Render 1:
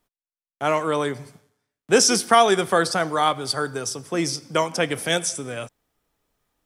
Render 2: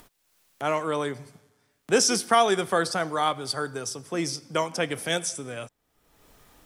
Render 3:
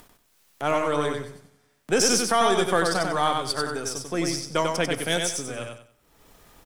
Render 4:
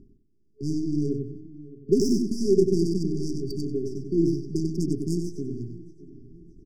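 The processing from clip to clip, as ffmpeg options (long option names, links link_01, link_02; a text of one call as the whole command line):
ffmpeg -i in.wav -af "acompressor=mode=upward:threshold=-32dB:ratio=2.5,volume=-4.5dB" out.wav
ffmpeg -i in.wav -filter_complex "[0:a]aeval=exprs='if(lt(val(0),0),0.708*val(0),val(0))':channel_layout=same,asplit=2[link_01][link_02];[link_02]aecho=0:1:94|188|282|376:0.631|0.177|0.0495|0.0139[link_03];[link_01][link_03]amix=inputs=2:normalize=0,alimiter=level_in=11dB:limit=-1dB:release=50:level=0:latency=1,volume=-8.5dB" out.wav
ffmpeg -i in.wav -af "aecho=1:1:619|1238|1857|2476:0.141|0.0664|0.0312|0.0147,adynamicsmooth=sensitivity=1:basefreq=840,afftfilt=real='re*(1-between(b*sr/4096,430,4600))':imag='im*(1-between(b*sr/4096,430,4600))':win_size=4096:overlap=0.75,volume=5.5dB" out.wav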